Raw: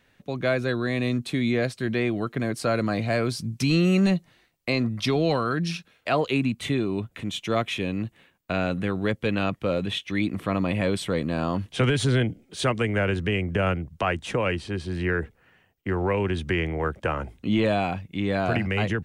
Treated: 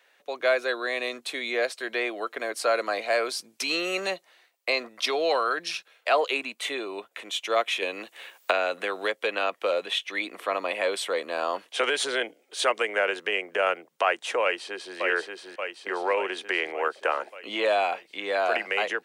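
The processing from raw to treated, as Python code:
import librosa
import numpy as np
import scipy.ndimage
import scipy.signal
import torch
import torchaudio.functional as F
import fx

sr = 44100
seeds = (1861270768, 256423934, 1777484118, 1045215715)

y = fx.band_squash(x, sr, depth_pct=100, at=(7.82, 9.72))
y = fx.echo_throw(y, sr, start_s=14.42, length_s=0.55, ms=580, feedback_pct=65, wet_db=-3.5)
y = scipy.signal.sosfilt(scipy.signal.butter(4, 470.0, 'highpass', fs=sr, output='sos'), y)
y = y * 10.0 ** (2.5 / 20.0)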